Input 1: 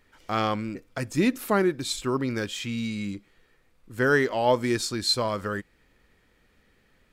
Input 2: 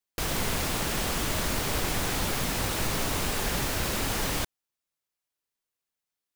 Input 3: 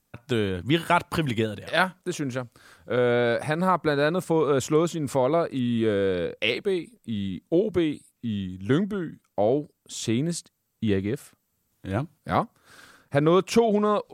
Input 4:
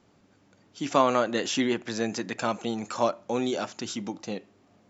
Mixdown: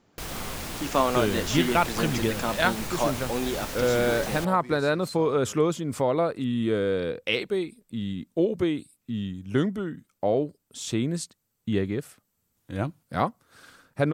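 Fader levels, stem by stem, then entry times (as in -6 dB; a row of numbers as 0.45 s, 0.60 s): -17.5 dB, -6.0 dB, -1.5 dB, -1.5 dB; 0.00 s, 0.00 s, 0.85 s, 0.00 s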